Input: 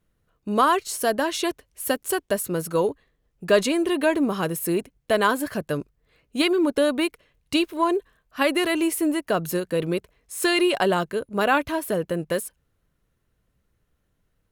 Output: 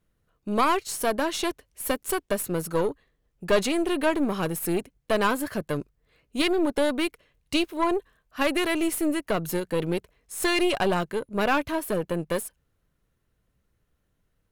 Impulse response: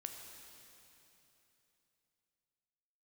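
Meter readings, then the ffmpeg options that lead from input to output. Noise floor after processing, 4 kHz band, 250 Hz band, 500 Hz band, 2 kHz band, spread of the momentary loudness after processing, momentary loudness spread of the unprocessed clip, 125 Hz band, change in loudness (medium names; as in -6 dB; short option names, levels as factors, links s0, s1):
-74 dBFS, -2.5 dB, -2.5 dB, -3.0 dB, -3.0 dB, 8 LU, 8 LU, -1.0 dB, -3.0 dB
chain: -filter_complex "[0:a]aeval=exprs='0.501*(cos(1*acos(clip(val(0)/0.501,-1,1)))-cos(1*PI/2))+0.0794*(cos(4*acos(clip(val(0)/0.501,-1,1)))-cos(4*PI/2))+0.0126*(cos(8*acos(clip(val(0)/0.501,-1,1)))-cos(8*PI/2))':c=same,asplit=2[s0][s1];[s1]asoftclip=type=tanh:threshold=0.0841,volume=0.562[s2];[s0][s2]amix=inputs=2:normalize=0,volume=0.531"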